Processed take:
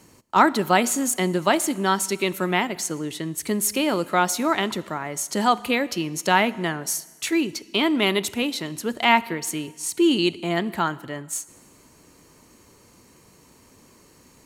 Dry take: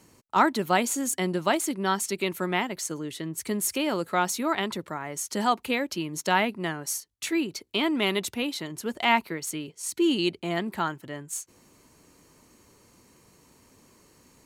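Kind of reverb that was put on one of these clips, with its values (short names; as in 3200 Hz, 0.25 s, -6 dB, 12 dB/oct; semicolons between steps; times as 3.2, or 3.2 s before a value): Schroeder reverb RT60 1.4 s, combs from 26 ms, DRR 18.5 dB; gain +4.5 dB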